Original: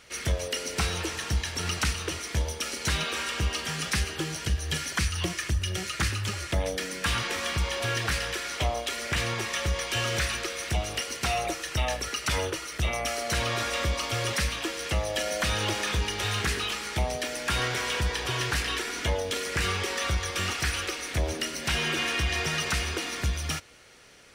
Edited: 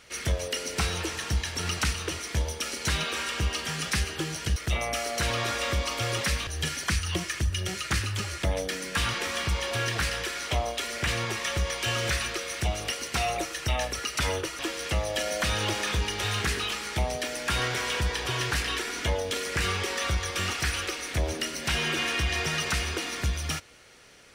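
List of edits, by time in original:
12.68–14.59 move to 4.56

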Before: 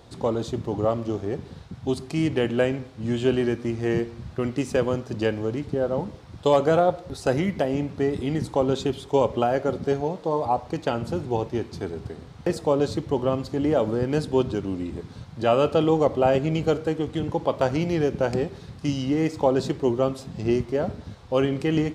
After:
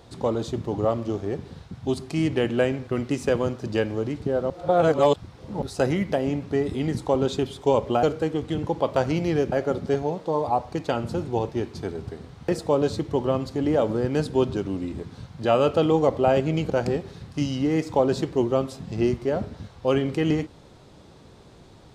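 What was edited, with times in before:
2.87–4.34 cut
5.97–7.09 reverse
16.68–18.17 move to 9.5

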